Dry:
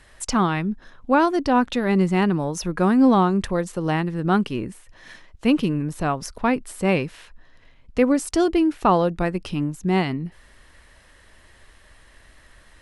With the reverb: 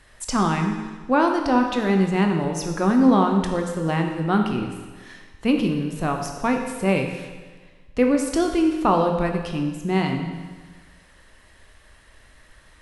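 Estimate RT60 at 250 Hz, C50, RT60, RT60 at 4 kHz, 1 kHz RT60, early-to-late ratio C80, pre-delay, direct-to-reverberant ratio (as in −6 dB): 1.4 s, 5.0 dB, 1.4 s, 1.4 s, 1.4 s, 7.0 dB, 17 ms, 3.0 dB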